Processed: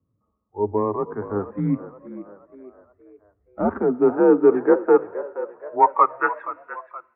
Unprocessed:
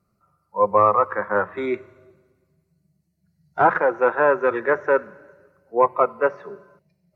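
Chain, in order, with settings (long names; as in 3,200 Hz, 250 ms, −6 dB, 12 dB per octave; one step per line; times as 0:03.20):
band-pass filter sweep 270 Hz → 2,300 Hz, 0:03.60–0:06.73
echo with shifted repeats 473 ms, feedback 47%, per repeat +52 Hz, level −14.5 dB
single-sideband voice off tune −99 Hz 180–3,300 Hz
level +7.5 dB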